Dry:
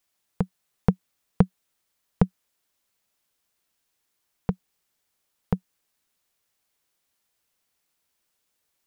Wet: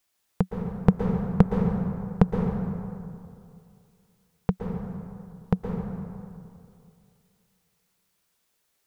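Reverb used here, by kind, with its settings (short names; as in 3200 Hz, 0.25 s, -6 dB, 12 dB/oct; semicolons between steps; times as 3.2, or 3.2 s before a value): plate-style reverb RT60 2.5 s, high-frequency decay 0.5×, pre-delay 0.105 s, DRR 1.5 dB; gain +1.5 dB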